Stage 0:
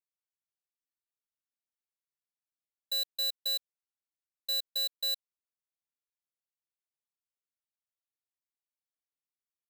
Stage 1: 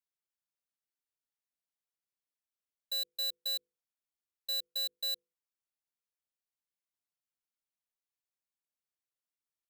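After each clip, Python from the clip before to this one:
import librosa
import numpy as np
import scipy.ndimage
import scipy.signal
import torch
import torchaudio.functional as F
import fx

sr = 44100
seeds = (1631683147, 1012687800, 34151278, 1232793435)

y = fx.hum_notches(x, sr, base_hz=50, count=10)
y = y * librosa.db_to_amplitude(-3.0)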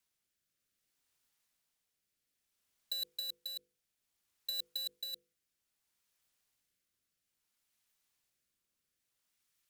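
y = fx.peak_eq(x, sr, hz=540.0, db=-4.5, octaves=2.1)
y = fx.over_compress(y, sr, threshold_db=-40.0, ratio=-0.5)
y = fx.rotary(y, sr, hz=0.6)
y = y * librosa.db_to_amplitude(6.0)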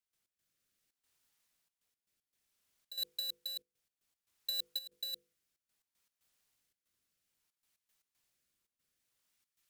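y = fx.step_gate(x, sr, bpm=116, pattern='.x.xxxx.xxxxx.x', floor_db=-12.0, edge_ms=4.5)
y = y * librosa.db_to_amplitude(1.5)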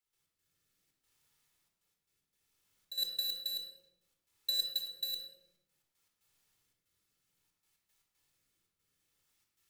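y = fx.room_shoebox(x, sr, seeds[0], volume_m3=2800.0, walls='furnished', distance_m=4.2)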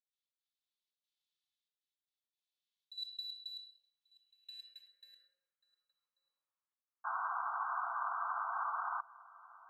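y = fx.spec_paint(x, sr, seeds[1], shape='noise', start_s=7.04, length_s=1.97, low_hz=660.0, high_hz=1600.0, level_db=-27.0)
y = y + 10.0 ** (-20.0 / 20.0) * np.pad(y, (int(1138 * sr / 1000.0), 0))[:len(y)]
y = fx.filter_sweep_bandpass(y, sr, from_hz=3700.0, to_hz=1100.0, start_s=3.87, end_s=6.15, q=3.7)
y = y * librosa.db_to_amplitude(-7.0)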